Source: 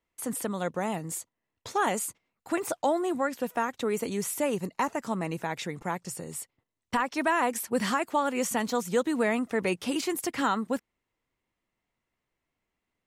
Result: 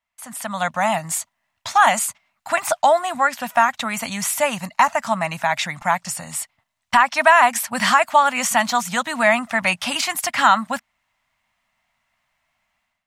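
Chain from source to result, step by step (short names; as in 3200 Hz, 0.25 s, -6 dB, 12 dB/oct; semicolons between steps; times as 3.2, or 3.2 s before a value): high shelf 11000 Hz -4 dB; AGC gain up to 13 dB; EQ curve 230 Hz 0 dB, 430 Hz -24 dB, 620 Hz +9 dB, 2100 Hz +11 dB, 14000 Hz +7 dB; gain -8 dB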